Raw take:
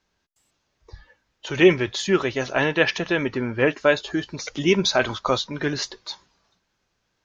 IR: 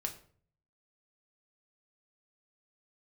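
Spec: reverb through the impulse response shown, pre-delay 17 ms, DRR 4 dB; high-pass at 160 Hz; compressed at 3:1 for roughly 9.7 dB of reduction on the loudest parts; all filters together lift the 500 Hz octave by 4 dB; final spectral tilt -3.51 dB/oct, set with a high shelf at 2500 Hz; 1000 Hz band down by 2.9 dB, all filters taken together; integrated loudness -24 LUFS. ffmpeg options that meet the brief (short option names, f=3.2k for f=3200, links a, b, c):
-filter_complex "[0:a]highpass=160,equalizer=f=500:t=o:g=7,equalizer=f=1k:t=o:g=-7.5,highshelf=f=2.5k:g=4.5,acompressor=threshold=-19dB:ratio=3,asplit=2[a][b];[1:a]atrim=start_sample=2205,adelay=17[c];[b][c]afir=irnorm=-1:irlink=0,volume=-4.5dB[d];[a][d]amix=inputs=2:normalize=0,volume=-1dB"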